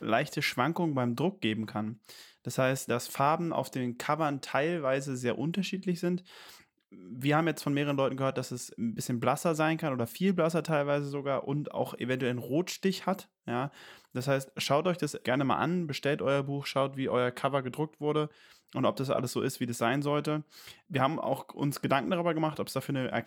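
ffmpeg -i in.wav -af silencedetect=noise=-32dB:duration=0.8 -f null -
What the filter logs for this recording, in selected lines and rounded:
silence_start: 6.17
silence_end: 7.22 | silence_duration: 1.05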